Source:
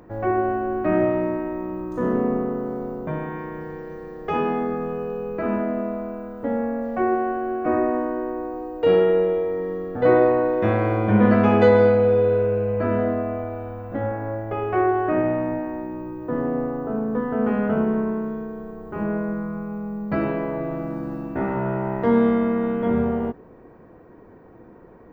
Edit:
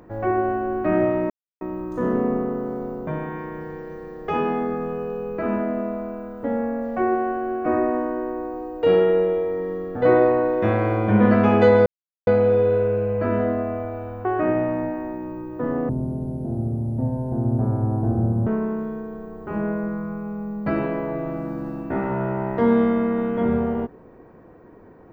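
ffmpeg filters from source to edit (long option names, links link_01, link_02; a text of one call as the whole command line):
ffmpeg -i in.wav -filter_complex "[0:a]asplit=7[link_01][link_02][link_03][link_04][link_05][link_06][link_07];[link_01]atrim=end=1.3,asetpts=PTS-STARTPTS,afade=type=out:start_time=1.296:duration=0.004:curve=hsin[link_08];[link_02]atrim=start=1.3:end=1.61,asetpts=PTS-STARTPTS,volume=0[link_09];[link_03]atrim=start=1.61:end=11.86,asetpts=PTS-STARTPTS,afade=type=in:duration=0.004:curve=hsin,afade=type=out:start_time=10.246:duration=0.004:curve=hsin,apad=pad_dur=0.41[link_10];[link_04]atrim=start=11.86:end=13.842,asetpts=PTS-STARTPTS,afade=type=in:duration=0.004:curve=hsin[link_11];[link_05]atrim=start=14.938:end=16.584[link_12];[link_06]atrim=start=16.58:end=17.92,asetpts=PTS-STARTPTS,asetrate=22932,aresample=44100,atrim=end_sample=113642,asetpts=PTS-STARTPTS[link_13];[link_07]atrim=start=17.916[link_14];[link_08][link_09][link_10][link_11]concat=n=4:v=0:a=1[link_15];[link_15][link_12]acrossfade=duration=0.004:curve1=hsin:curve2=hsin[link_16];[link_16][link_13]acrossfade=duration=0.004:curve1=hsin:curve2=hsin[link_17];[link_17][link_14]acrossfade=duration=0.004:curve1=hsin:curve2=hsin" out.wav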